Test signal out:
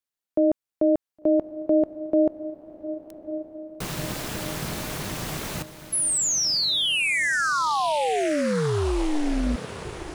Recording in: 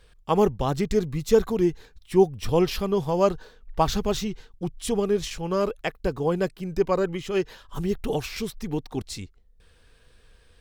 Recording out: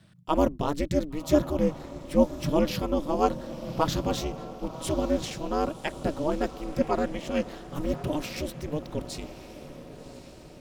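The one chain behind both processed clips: diffused feedback echo 1.101 s, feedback 52%, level -13 dB; ring modulator 150 Hz

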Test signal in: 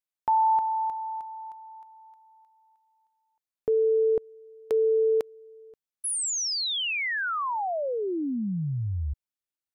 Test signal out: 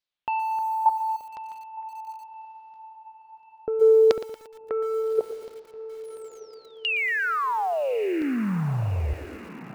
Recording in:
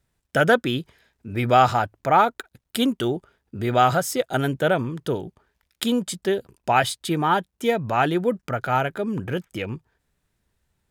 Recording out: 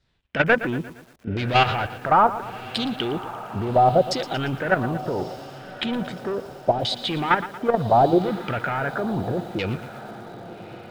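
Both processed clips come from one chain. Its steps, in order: dynamic EQ 4100 Hz, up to +4 dB, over -54 dBFS, Q 7.2; soft clip -21.5 dBFS; LFO low-pass saw down 0.73 Hz 470–4600 Hz; level quantiser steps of 11 dB; diffused feedback echo 1.186 s, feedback 50%, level -15.5 dB; lo-fi delay 0.116 s, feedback 55%, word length 8-bit, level -14 dB; gain +7.5 dB

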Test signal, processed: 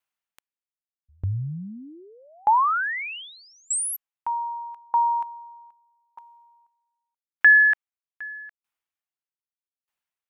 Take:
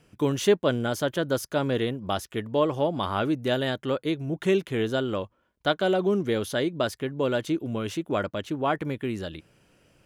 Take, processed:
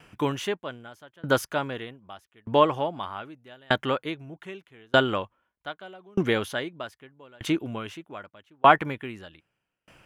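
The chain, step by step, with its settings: band shelf 1500 Hz +8 dB 2.4 oct; dB-ramp tremolo decaying 0.81 Hz, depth 36 dB; gain +5 dB

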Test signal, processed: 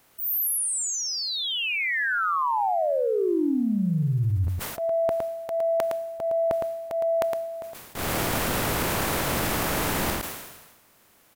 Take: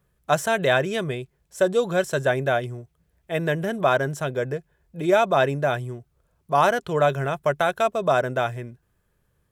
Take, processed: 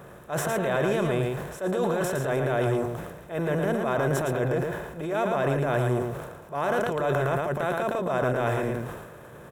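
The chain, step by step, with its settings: per-bin compression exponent 0.6; bell 5200 Hz -8 dB 2.5 oct; reverse; compressor, threshold -25 dBFS; reverse; transient shaper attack -8 dB, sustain +6 dB; on a send: echo 0.112 s -4.5 dB; on the sum: sustainer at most 47 dB/s; gain +2 dB

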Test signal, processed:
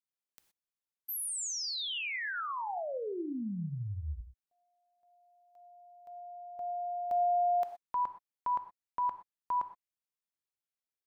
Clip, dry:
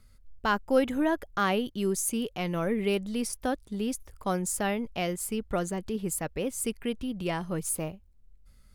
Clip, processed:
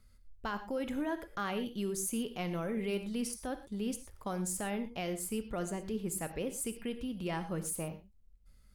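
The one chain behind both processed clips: limiter -22 dBFS; non-linear reverb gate 0.14 s flat, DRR 9 dB; gain -5.5 dB

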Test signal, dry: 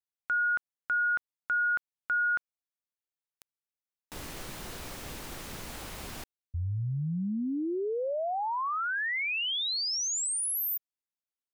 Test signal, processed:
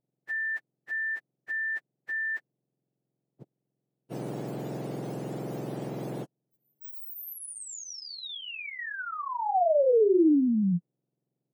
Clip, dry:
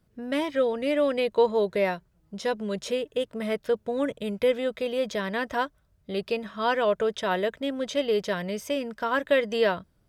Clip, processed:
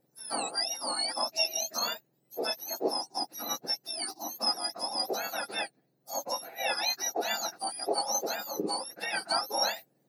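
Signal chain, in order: spectrum mirrored in octaves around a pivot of 1600 Hz; band shelf 500 Hz +8.5 dB; gain -2.5 dB

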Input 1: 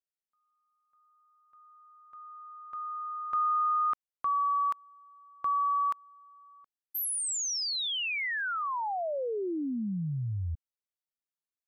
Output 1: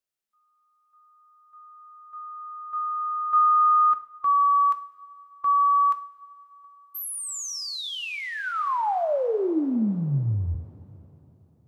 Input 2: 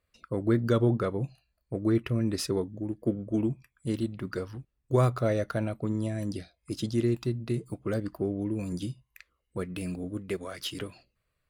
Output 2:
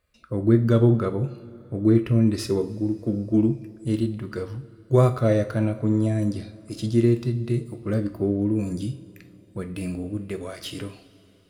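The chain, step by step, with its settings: harmonic-percussive split percussive -9 dB; two-slope reverb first 0.44 s, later 3.8 s, from -18 dB, DRR 8 dB; gain +7.5 dB

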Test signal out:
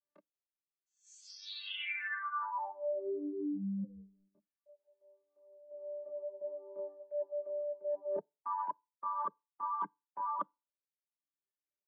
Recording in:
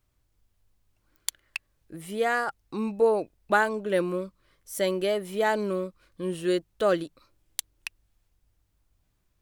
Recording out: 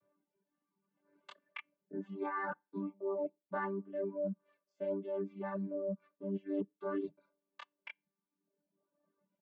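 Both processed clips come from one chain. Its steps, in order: chord vocoder bare fifth, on G3; LPF 1600 Hz 12 dB/oct; chorus voices 4, 0.61 Hz, delay 25 ms, depth 2.5 ms; comb 1.8 ms, depth 58%; reverse; compressor 16:1, threshold -41 dBFS; reverse; FDN reverb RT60 0.3 s, low-frequency decay 0.9×, high-frequency decay 0.95×, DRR 17 dB; reverb removal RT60 1.4 s; gain +8 dB

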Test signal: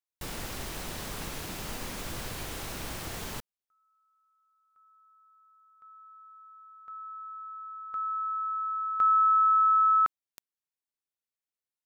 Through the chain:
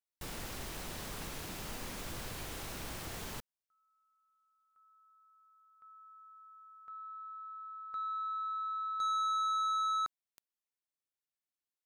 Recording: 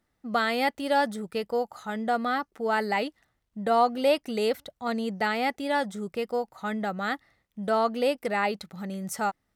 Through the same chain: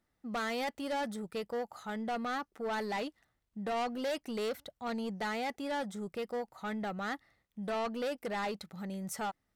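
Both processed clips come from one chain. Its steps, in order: soft clip -26.5 dBFS; gain -4.5 dB

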